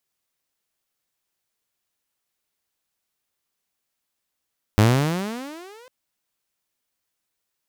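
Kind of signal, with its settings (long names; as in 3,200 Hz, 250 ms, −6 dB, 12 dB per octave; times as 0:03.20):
pitch glide with a swell saw, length 1.10 s, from 101 Hz, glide +28.5 semitones, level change −34.5 dB, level −8.5 dB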